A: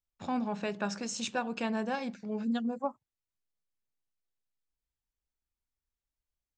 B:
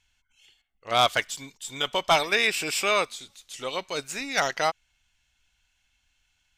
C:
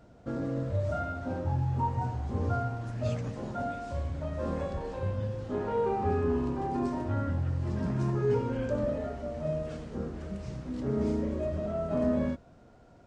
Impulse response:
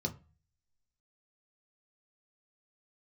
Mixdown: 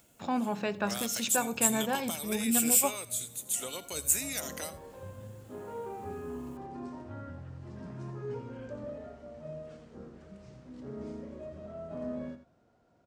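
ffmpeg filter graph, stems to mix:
-filter_complex "[0:a]acompressor=mode=upward:threshold=-52dB:ratio=2.5,volume=2.5dB,asplit=3[a][b][c];[b]volume=-21.5dB[d];[1:a]acompressor=threshold=-29dB:ratio=6,aexciter=amount=10.5:drive=6:freq=7.4k,acrossover=split=430|3000[e][f][g];[f]acompressor=threshold=-41dB:ratio=6[h];[e][h][g]amix=inputs=3:normalize=0,volume=-3dB,asplit=2[i][j];[j]volume=-17dB[k];[2:a]volume=-10.5dB,asplit=2[l][m];[m]volume=-11dB[n];[c]apad=whole_len=576232[o];[l][o]sidechaincompress=threshold=-44dB:ratio=8:attack=16:release=969[p];[d][k][n]amix=inputs=3:normalize=0,aecho=0:1:85:1[q];[a][i][p][q]amix=inputs=4:normalize=0,highpass=f=120:p=1"

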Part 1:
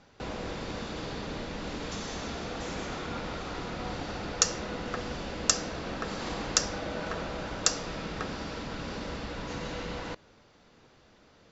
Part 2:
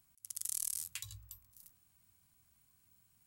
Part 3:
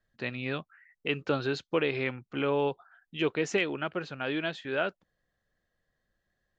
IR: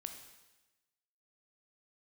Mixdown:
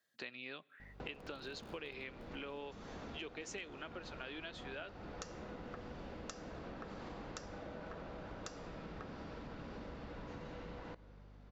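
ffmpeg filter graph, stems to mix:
-filter_complex "[0:a]lowpass=f=1.5k:p=1,aeval=exprs='val(0)+0.00251*(sin(2*PI*50*n/s)+sin(2*PI*2*50*n/s)/2+sin(2*PI*3*50*n/s)/3+sin(2*PI*4*50*n/s)/4+sin(2*PI*5*50*n/s)/5)':c=same,adelay=800,volume=-6dB,asplit=2[a][b];[b]volume=-10dB[c];[1:a]acrusher=samples=23:mix=1:aa=0.000001,acompressor=threshold=-49dB:ratio=2,adelay=900,volume=-3.5dB[d];[2:a]highpass=250,highshelf=f=2.6k:g=11,volume=-5dB,asplit=3[e][f][g];[f]volume=-20dB[h];[g]apad=whole_len=183563[i];[d][i]sidechaingate=range=-33dB:threshold=-58dB:ratio=16:detection=peak[j];[3:a]atrim=start_sample=2205[k];[c][h]amix=inputs=2:normalize=0[l];[l][k]afir=irnorm=-1:irlink=0[m];[a][j][e][m]amix=inputs=4:normalize=0,acompressor=threshold=-45dB:ratio=5"

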